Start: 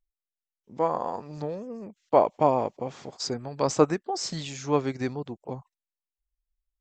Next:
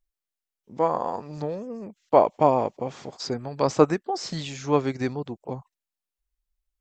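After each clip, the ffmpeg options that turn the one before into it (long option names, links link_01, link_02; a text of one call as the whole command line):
ffmpeg -i in.wav -filter_complex "[0:a]acrossover=split=4900[link_01][link_02];[link_02]acompressor=threshold=-45dB:ratio=4:attack=1:release=60[link_03];[link_01][link_03]amix=inputs=2:normalize=0,volume=2.5dB" out.wav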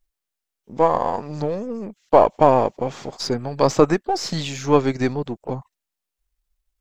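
ffmpeg -i in.wav -af "aeval=exprs='if(lt(val(0),0),0.708*val(0),val(0))':channel_layout=same,alimiter=level_in=8.5dB:limit=-1dB:release=50:level=0:latency=1,volume=-1dB" out.wav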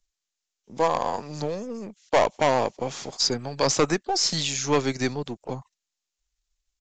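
ffmpeg -i in.wav -filter_complex "[0:a]acrossover=split=180|1400[link_01][link_02][link_03];[link_02]asoftclip=type=hard:threshold=-10.5dB[link_04];[link_01][link_04][link_03]amix=inputs=3:normalize=0,crystalizer=i=4.5:c=0,aresample=16000,aresample=44100,volume=-5.5dB" out.wav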